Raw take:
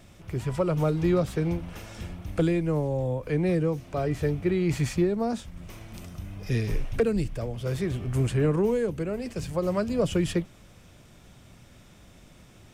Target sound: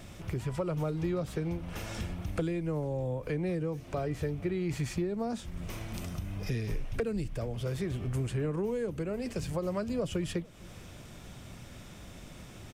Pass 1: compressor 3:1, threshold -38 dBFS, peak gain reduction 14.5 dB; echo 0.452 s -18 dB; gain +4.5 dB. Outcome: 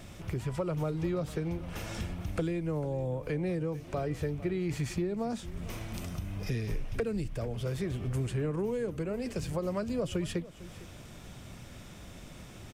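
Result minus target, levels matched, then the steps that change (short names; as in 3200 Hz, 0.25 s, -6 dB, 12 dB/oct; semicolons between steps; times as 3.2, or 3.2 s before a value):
echo-to-direct +8.5 dB
change: echo 0.452 s -26.5 dB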